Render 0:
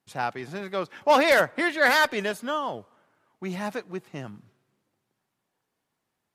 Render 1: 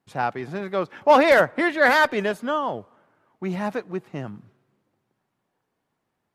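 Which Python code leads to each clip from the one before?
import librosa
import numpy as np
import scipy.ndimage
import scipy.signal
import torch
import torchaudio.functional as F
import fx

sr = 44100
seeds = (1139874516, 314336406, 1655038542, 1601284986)

y = fx.high_shelf(x, sr, hz=2700.0, db=-10.5)
y = y * 10.0 ** (5.0 / 20.0)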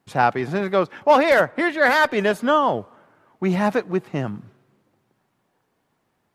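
y = fx.rider(x, sr, range_db=4, speed_s=0.5)
y = y * 10.0 ** (3.0 / 20.0)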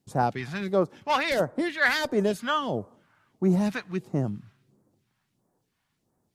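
y = fx.phaser_stages(x, sr, stages=2, low_hz=380.0, high_hz=2600.0, hz=1.5, feedback_pct=40)
y = y * 10.0 ** (-2.5 / 20.0)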